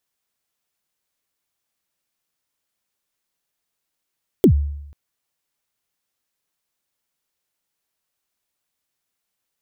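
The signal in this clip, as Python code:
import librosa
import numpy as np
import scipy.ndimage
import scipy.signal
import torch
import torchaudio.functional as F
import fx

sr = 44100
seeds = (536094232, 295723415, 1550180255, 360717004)

y = fx.drum_kick(sr, seeds[0], length_s=0.49, level_db=-6.0, start_hz=440.0, end_hz=72.0, sweep_ms=87.0, decay_s=0.84, click=True)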